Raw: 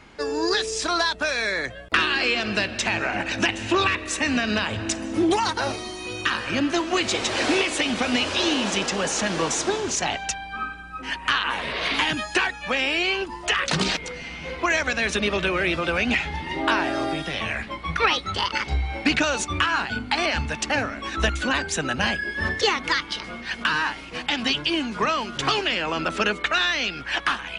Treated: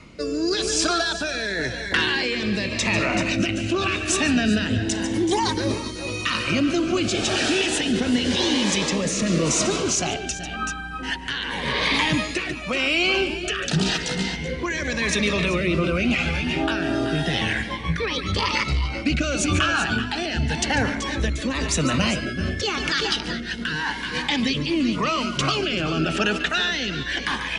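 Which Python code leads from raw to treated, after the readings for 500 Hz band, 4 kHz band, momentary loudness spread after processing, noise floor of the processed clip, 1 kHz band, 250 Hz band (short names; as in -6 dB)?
+1.0 dB, +0.5 dB, 6 LU, -32 dBFS, -2.5 dB, +4.5 dB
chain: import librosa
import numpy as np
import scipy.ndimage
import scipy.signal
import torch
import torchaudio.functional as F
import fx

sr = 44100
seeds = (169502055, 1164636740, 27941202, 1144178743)

p1 = fx.echo_multitap(x, sr, ms=(143, 146, 380, 396), db=(-17.0, -16.5, -13.0, -14.5))
p2 = fx.over_compress(p1, sr, threshold_db=-26.0, ratio=-1.0)
p3 = p1 + F.gain(torch.from_numpy(p2), -1.5).numpy()
p4 = fx.rotary(p3, sr, hz=0.9)
p5 = fx.peak_eq(p4, sr, hz=150.0, db=5.5, octaves=0.98)
y = fx.notch_cascade(p5, sr, direction='rising', hz=0.32)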